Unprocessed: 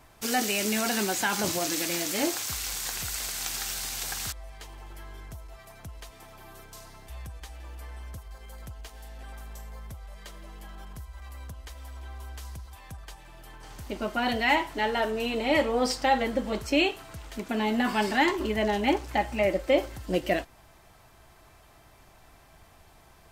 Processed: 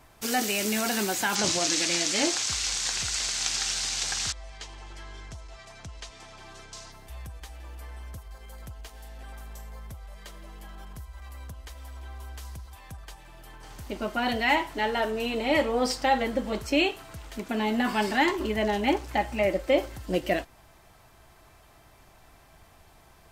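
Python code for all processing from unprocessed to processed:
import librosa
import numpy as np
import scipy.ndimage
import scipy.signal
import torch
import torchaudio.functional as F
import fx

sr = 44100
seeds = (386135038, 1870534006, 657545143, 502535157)

y = fx.chain(x, sr, fx.lowpass(hz=7100.0, slope=24),
    fx.high_shelf(hz=2400.0, db=9.0), at=(1.35, 6.92))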